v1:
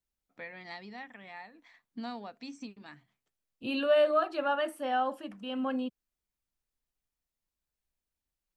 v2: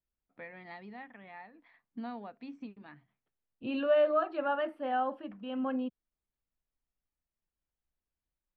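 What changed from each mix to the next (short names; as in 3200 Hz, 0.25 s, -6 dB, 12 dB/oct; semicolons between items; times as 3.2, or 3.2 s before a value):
master: add air absorption 410 m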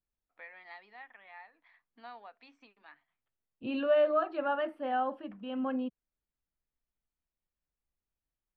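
first voice: add HPF 810 Hz 12 dB/oct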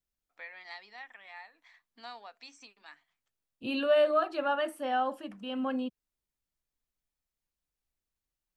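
master: remove air absorption 410 m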